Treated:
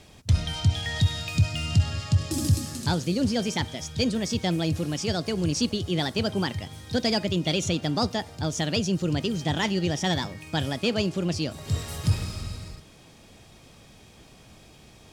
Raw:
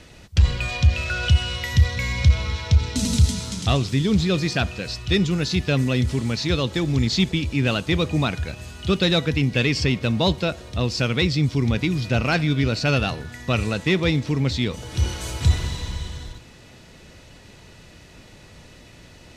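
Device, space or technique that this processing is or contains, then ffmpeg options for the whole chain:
nightcore: -af "asetrate=56448,aresample=44100,volume=-5dB"

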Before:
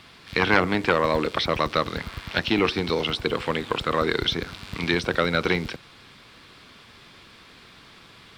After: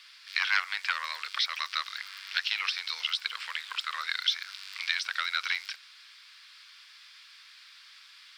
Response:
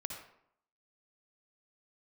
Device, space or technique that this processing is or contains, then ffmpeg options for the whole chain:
headphones lying on a table: -af "highpass=frequency=1400:width=0.5412,highpass=frequency=1400:width=1.3066,equalizer=frequency=5000:width_type=o:width=0.52:gain=7,volume=-3.5dB"

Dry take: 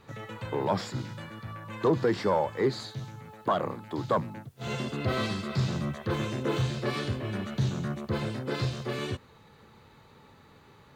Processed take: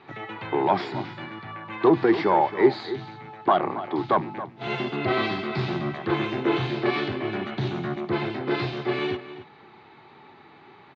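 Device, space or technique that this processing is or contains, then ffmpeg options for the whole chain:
kitchen radio: -filter_complex "[0:a]highpass=180,equalizer=frequency=210:width_type=q:width=4:gain=-4,equalizer=frequency=360:width_type=q:width=4:gain=8,equalizer=frequency=510:width_type=q:width=4:gain=-10,equalizer=frequency=770:width_type=q:width=4:gain=8,equalizer=frequency=2200:width_type=q:width=4:gain=5,lowpass=frequency=4000:width=0.5412,lowpass=frequency=4000:width=1.3066,asplit=2[link_01][link_02];[link_02]adelay=274.1,volume=-13dB,highshelf=frequency=4000:gain=-6.17[link_03];[link_01][link_03]amix=inputs=2:normalize=0,volume=5dB"

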